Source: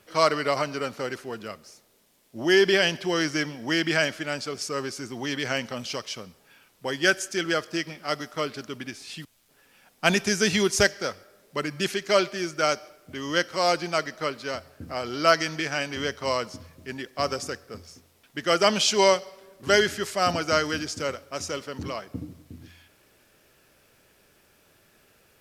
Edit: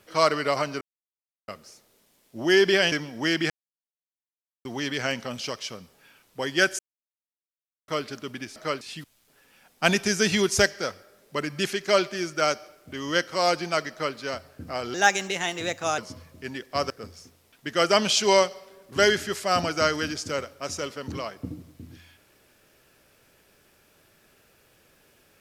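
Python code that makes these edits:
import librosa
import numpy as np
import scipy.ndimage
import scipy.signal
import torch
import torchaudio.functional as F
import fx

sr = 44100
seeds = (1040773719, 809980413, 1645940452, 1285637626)

y = fx.edit(x, sr, fx.silence(start_s=0.81, length_s=0.67),
    fx.cut(start_s=2.92, length_s=0.46),
    fx.silence(start_s=3.96, length_s=1.15),
    fx.silence(start_s=7.25, length_s=1.09),
    fx.duplicate(start_s=14.12, length_s=0.25, to_s=9.02),
    fx.speed_span(start_s=15.15, length_s=1.27, speed=1.22),
    fx.cut(start_s=17.34, length_s=0.27), tone=tone)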